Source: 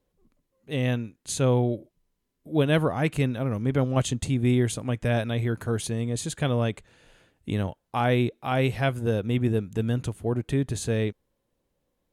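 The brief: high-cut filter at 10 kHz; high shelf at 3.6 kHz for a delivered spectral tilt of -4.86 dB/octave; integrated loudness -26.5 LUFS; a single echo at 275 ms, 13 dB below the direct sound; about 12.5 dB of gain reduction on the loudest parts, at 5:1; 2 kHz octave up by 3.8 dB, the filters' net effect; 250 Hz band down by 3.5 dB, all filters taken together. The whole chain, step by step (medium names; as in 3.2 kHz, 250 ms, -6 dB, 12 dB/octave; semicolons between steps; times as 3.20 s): low-pass 10 kHz; peaking EQ 250 Hz -4.5 dB; peaking EQ 2 kHz +4 dB; treble shelf 3.6 kHz +3.5 dB; compression 5:1, threshold -33 dBFS; delay 275 ms -13 dB; trim +10.5 dB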